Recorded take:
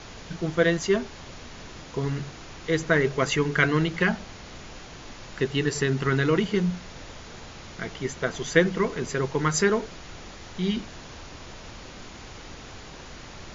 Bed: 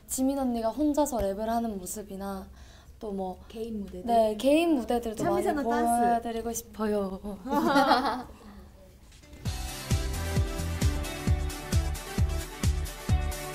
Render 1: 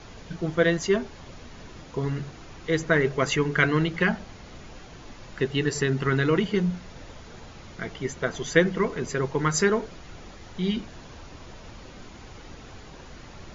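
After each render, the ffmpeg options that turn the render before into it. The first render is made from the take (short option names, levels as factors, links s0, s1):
-af "afftdn=nr=6:nf=-43"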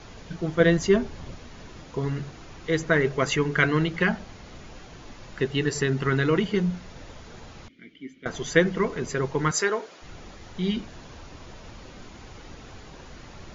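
-filter_complex "[0:a]asettb=1/sr,asplit=3[s0][s1][s2];[s0]atrim=end=0.604[s3];[s1]atrim=start=0.6:end=1.35,asetpts=PTS-STARTPTS,afade=t=in:d=0.004:c=qsin,afade=t=out:st=0.746:d=0.004:c=qsin,lowshelf=f=320:g=7[s4];[s2]atrim=start=1.346[s5];[s3][s4]acrossfade=d=0.004:c1=hsin:c2=qsin[s6];[s6][s5]acrossfade=d=0.004:c1=qsin:c2=hsin,asettb=1/sr,asplit=3[s7][s8][s9];[s7]atrim=end=7.684[s10];[s8]atrim=start=7.68:end=8.26,asetpts=PTS-STARTPTS,afade=t=in:d=0.004:c=qsin,afade=t=out:st=0.576:d=0.004:c=qsin,asplit=3[s11][s12][s13];[s11]bandpass=f=270:t=q:w=8,volume=1[s14];[s12]bandpass=f=2290:t=q:w=8,volume=0.501[s15];[s13]bandpass=f=3010:t=q:w=8,volume=0.355[s16];[s14][s15][s16]amix=inputs=3:normalize=0[s17];[s9]atrim=start=8.256[s18];[s10][s17]acrossfade=d=0.004:c1=hsin:c2=qsin[s19];[s19][s18]acrossfade=d=0.004:c1=qsin:c2=hsin,asettb=1/sr,asplit=3[s20][s21][s22];[s20]atrim=end=9.514[s23];[s21]atrim=start=9.51:end=10.02,asetpts=PTS-STARTPTS,afade=t=in:d=0.004:c=qsin,afade=t=out:st=0.506:d=0.004:c=qsin,highpass=430[s24];[s22]atrim=start=10.016[s25];[s23][s24]acrossfade=d=0.004:c1=hsin:c2=qsin[s26];[s26][s25]acrossfade=d=0.004:c1=qsin:c2=hsin"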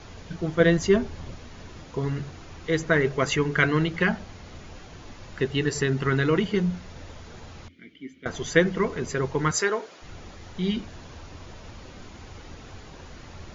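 -af "equalizer=f=86:t=o:w=0.25:g=8.5"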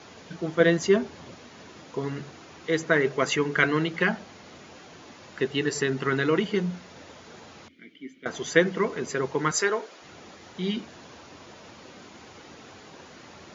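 -af "highpass=200"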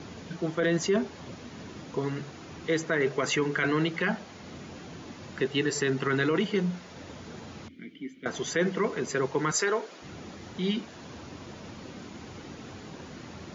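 -filter_complex "[0:a]acrossover=split=300|1600[s0][s1][s2];[s0]acompressor=mode=upward:threshold=0.0178:ratio=2.5[s3];[s3][s1][s2]amix=inputs=3:normalize=0,alimiter=limit=0.141:level=0:latency=1:release=11"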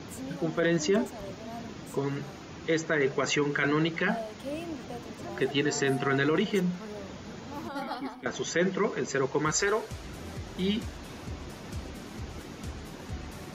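-filter_complex "[1:a]volume=0.2[s0];[0:a][s0]amix=inputs=2:normalize=0"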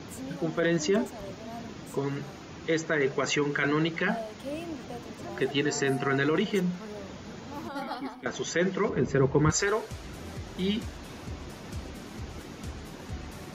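-filter_complex "[0:a]asettb=1/sr,asplit=3[s0][s1][s2];[s0]atrim=end=5.714[s3];[s1]atrim=start=5.71:end=6.22,asetpts=PTS-STARTPTS,afade=t=in:d=0.004:c=qsin,afade=t=out:st=0.506:d=0.004:c=qsin,bandreject=f=3400:w=6.7[s4];[s2]atrim=start=6.216[s5];[s3][s4]acrossfade=d=0.004:c1=hsin:c2=qsin[s6];[s6][s5]acrossfade=d=0.004:c1=qsin:c2=hsin,asettb=1/sr,asplit=3[s7][s8][s9];[s7]atrim=end=8.894[s10];[s8]atrim=start=8.89:end=9.5,asetpts=PTS-STARTPTS,afade=t=in:d=0.004:c=qsin,afade=t=out:st=0.606:d=0.004:c=qsin,aemphasis=mode=reproduction:type=riaa[s11];[s9]atrim=start=9.496[s12];[s10][s11]acrossfade=d=0.004:c1=hsin:c2=qsin[s13];[s13][s12]acrossfade=d=0.004:c1=qsin:c2=hsin"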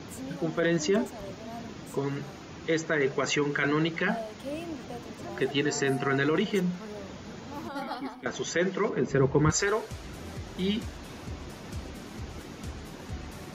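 -filter_complex "[0:a]asettb=1/sr,asplit=3[s0][s1][s2];[s0]atrim=end=8.574[s3];[s1]atrim=start=8.57:end=9.11,asetpts=PTS-STARTPTS,afade=t=in:d=0.004:c=qsin,afade=t=out:st=0.536:d=0.004:c=qsin,highpass=170[s4];[s2]atrim=start=9.106[s5];[s3][s4]acrossfade=d=0.004:c1=hsin:c2=qsin[s6];[s6][s5]acrossfade=d=0.004:c1=qsin:c2=hsin"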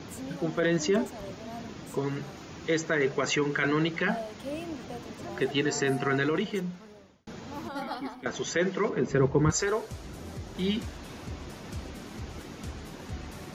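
-filter_complex "[0:a]asettb=1/sr,asplit=3[s0][s1][s2];[s0]atrim=end=2.374[s3];[s1]atrim=start=2.37:end=3.06,asetpts=PTS-STARTPTS,afade=t=in:d=0.004:c=qsin,afade=t=out:st=0.686:d=0.004:c=qsin,highshelf=f=7300:g=5.5[s4];[s2]atrim=start=3.056[s5];[s3][s4]acrossfade=d=0.004:c1=hsin:c2=qsin[s6];[s6][s5]acrossfade=d=0.004:c1=qsin:c2=hsin,asettb=1/sr,asplit=3[s7][s8][s9];[s7]atrim=end=9.284[s10];[s8]atrim=start=9.28:end=10.55,asetpts=PTS-STARTPTS,afade=t=in:d=0.004:c=qsin,afade=t=out:st=1.266:d=0.004:c=qsin,equalizer=f=2300:t=o:w=2.1:g=-4[s11];[s9]atrim=start=10.546[s12];[s10][s11]acrossfade=d=0.004:c1=hsin:c2=qsin[s13];[s13][s12]acrossfade=d=0.004:c1=qsin:c2=hsin,asplit=2[s14][s15];[s14]atrim=end=7.27,asetpts=PTS-STARTPTS,afade=t=out:st=6.12:d=1.15[s16];[s15]atrim=start=7.27,asetpts=PTS-STARTPTS,afade=t=in:d=0.004:c=hsin[s17];[s16][s17]concat=n=2:v=0:a=1"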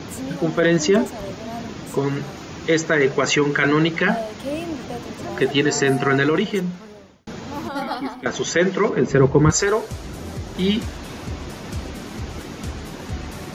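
-af "volume=2.82"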